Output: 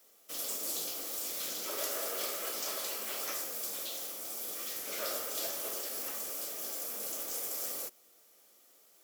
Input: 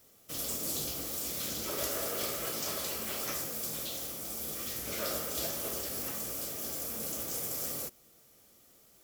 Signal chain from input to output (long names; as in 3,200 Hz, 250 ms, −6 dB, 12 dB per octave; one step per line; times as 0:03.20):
high-pass filter 400 Hz 12 dB per octave
level −1 dB